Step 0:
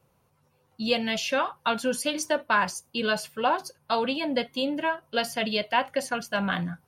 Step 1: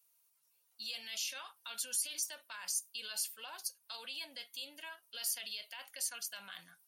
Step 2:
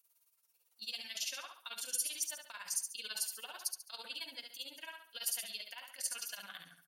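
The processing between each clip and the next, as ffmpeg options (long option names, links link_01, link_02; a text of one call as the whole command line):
ffmpeg -i in.wav -af "highshelf=frequency=2300:gain=8,alimiter=limit=-20dB:level=0:latency=1:release=23,aderivative,volume=-4.5dB" out.wav
ffmpeg -i in.wav -filter_complex "[0:a]tremolo=f=18:d=0.87,asplit=2[link_01][link_02];[link_02]aecho=0:1:70|140|210|280:0.501|0.175|0.0614|0.0215[link_03];[link_01][link_03]amix=inputs=2:normalize=0,volume=2.5dB" out.wav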